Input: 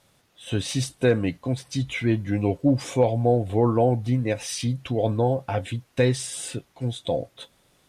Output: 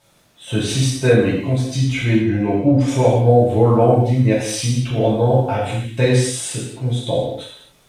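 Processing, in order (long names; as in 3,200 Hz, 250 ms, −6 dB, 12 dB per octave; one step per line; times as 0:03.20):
0:02.13–0:02.88: high-shelf EQ 5,000 Hz −12 dB
surface crackle 30 per second −49 dBFS
reverb whose tail is shaped and stops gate 300 ms falling, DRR −6.5 dB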